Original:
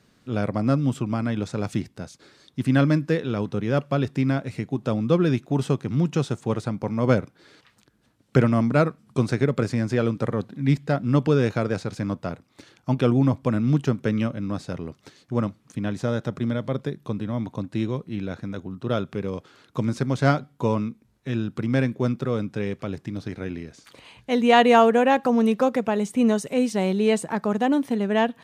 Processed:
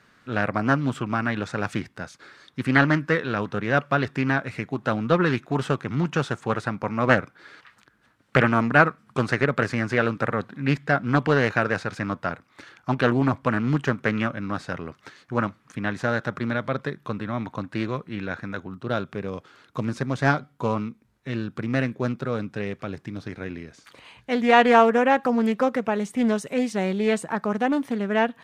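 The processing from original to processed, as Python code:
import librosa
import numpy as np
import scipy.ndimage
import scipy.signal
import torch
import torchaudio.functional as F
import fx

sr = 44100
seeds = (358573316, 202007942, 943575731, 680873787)

y = fx.peak_eq(x, sr, hz=1500.0, db=fx.steps((0.0, 13.5), (18.74, 6.0)), octaves=1.8)
y = fx.doppler_dist(y, sr, depth_ms=0.44)
y = y * 10.0 ** (-3.0 / 20.0)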